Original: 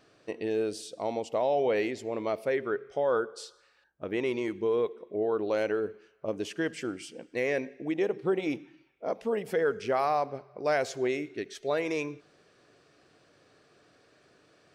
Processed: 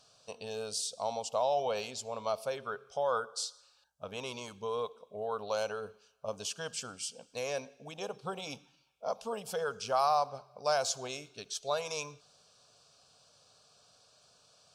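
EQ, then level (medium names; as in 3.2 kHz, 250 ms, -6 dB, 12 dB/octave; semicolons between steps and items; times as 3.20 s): peaking EQ 6.1 kHz +13.5 dB 2.9 oct; dynamic bell 1.2 kHz, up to +4 dB, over -43 dBFS, Q 1.3; static phaser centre 810 Hz, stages 4; -3.5 dB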